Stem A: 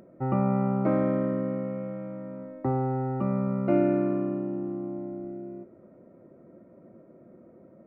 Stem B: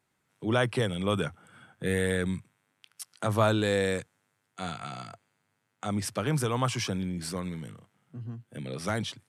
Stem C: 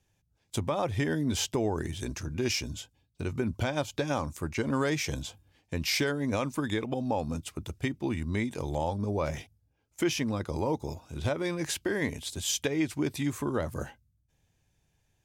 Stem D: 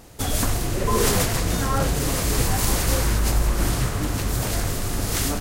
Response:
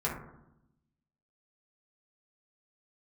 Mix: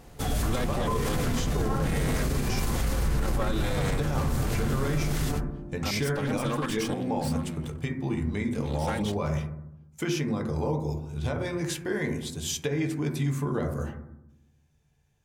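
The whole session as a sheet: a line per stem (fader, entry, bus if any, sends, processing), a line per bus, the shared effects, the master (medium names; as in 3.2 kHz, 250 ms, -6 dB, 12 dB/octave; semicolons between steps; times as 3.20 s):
-12.5 dB, 1.15 s, no send, none
-0.5 dB, 0.00 s, no send, comb filter that takes the minimum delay 3.7 ms
-6.0 dB, 0.00 s, send -3.5 dB, none
-7.0 dB, 0.00 s, send -8.5 dB, octave divider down 2 oct, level 0 dB; tone controls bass +1 dB, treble -5 dB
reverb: on, RT60 0.85 s, pre-delay 3 ms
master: peak limiter -18.5 dBFS, peak gain reduction 11 dB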